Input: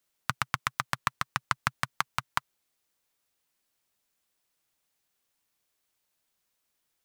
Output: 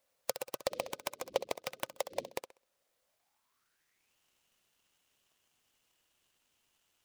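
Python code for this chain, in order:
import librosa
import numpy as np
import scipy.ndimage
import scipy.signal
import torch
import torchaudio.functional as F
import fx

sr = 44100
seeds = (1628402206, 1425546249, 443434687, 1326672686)

p1 = fx.bit_reversed(x, sr, seeds[0], block=32)
p2 = fx.dmg_wind(p1, sr, seeds[1], corner_hz=120.0, level_db=-39.0, at=(0.7, 2.27), fade=0.02)
p3 = fx.spec_gate(p2, sr, threshold_db=-25, keep='strong')
p4 = fx.env_lowpass_down(p3, sr, base_hz=2800.0, full_db=-30.5)
p5 = fx.high_shelf(p4, sr, hz=8900.0, db=7.0)
p6 = fx.rider(p5, sr, range_db=10, speed_s=0.5)
p7 = p6 + fx.room_flutter(p6, sr, wall_m=11.1, rt60_s=0.33, dry=0)
p8 = fx.filter_sweep_highpass(p7, sr, from_hz=530.0, to_hz=2900.0, start_s=3.03, end_s=4.17, q=7.2)
y = fx.noise_mod_delay(p8, sr, seeds[2], noise_hz=3500.0, depth_ms=0.053)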